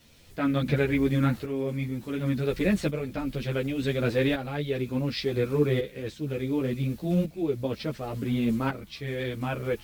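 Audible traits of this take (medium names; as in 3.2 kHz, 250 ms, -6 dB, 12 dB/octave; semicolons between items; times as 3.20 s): a quantiser's noise floor 10-bit, dither triangular; tremolo saw up 0.69 Hz, depth 65%; a shimmering, thickened sound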